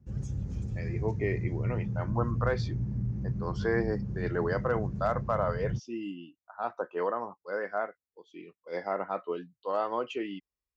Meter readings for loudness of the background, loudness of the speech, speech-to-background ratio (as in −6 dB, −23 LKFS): −34.5 LKFS, −34.0 LKFS, 0.5 dB